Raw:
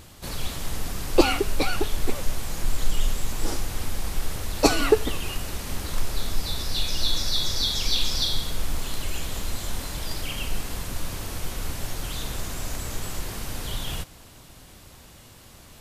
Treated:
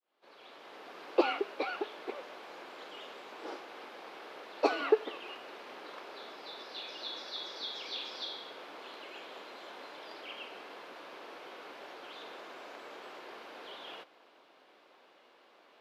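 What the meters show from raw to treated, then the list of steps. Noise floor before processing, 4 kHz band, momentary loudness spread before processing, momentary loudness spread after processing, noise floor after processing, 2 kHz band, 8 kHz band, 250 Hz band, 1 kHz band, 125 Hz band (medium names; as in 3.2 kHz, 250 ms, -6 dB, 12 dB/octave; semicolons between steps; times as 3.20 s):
-48 dBFS, -14.0 dB, 13 LU, 16 LU, -63 dBFS, -8.5 dB, -29.5 dB, -12.5 dB, -6.5 dB, under -40 dB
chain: fade-in on the opening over 1.01 s; high-pass 370 Hz 24 dB/octave; distance through air 340 m; band-stop 1.9 kHz, Q 25; trim -5 dB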